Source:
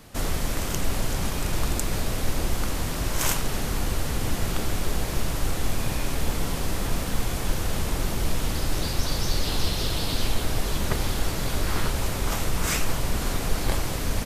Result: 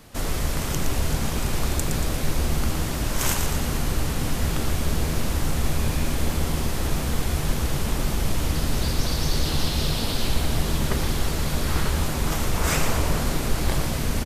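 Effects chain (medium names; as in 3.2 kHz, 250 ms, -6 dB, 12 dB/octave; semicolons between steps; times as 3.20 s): 12.54–13.21 s: peaking EQ 670 Hz +5 dB 2.4 oct; frequency-shifting echo 116 ms, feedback 57%, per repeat -81 Hz, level -6.5 dB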